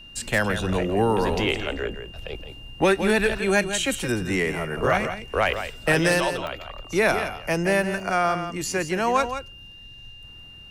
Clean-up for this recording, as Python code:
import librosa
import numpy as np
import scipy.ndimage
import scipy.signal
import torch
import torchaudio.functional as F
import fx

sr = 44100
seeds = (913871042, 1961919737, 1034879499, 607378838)

y = fx.fix_declip(x, sr, threshold_db=-11.0)
y = fx.notch(y, sr, hz=2800.0, q=30.0)
y = fx.fix_interpolate(y, sr, at_s=(1.72, 5.54, 6.47, 8.0), length_ms=1.4)
y = fx.fix_echo_inverse(y, sr, delay_ms=168, level_db=-9.5)